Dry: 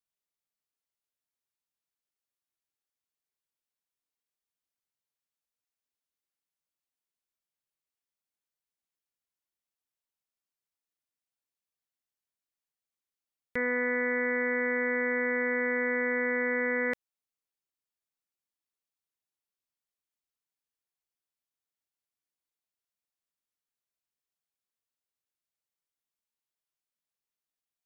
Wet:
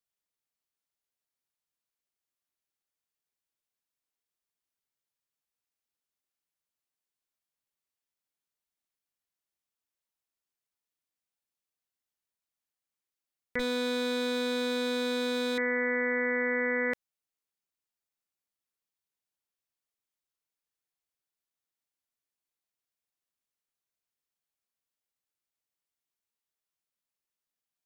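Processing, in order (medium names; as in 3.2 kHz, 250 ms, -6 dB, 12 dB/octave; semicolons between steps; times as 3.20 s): 13.59–15.58 s: comb filter that takes the minimum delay 3.8 ms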